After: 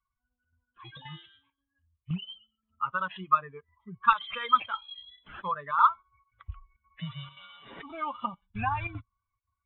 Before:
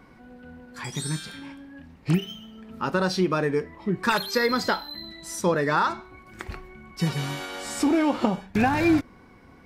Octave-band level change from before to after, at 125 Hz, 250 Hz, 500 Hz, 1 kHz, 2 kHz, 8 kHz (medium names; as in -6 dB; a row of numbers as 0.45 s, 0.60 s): -11.0 dB, -19.0 dB, -20.0 dB, +0.5 dB, -7.5 dB, under -40 dB